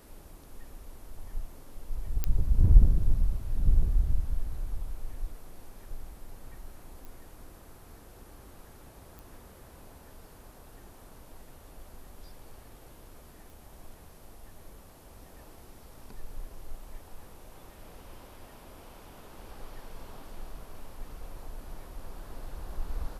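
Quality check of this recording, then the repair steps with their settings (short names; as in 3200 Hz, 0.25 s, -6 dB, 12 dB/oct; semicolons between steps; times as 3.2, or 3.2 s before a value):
2.24 pop -14 dBFS
7.05 pop
9.19 pop
13.5 pop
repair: de-click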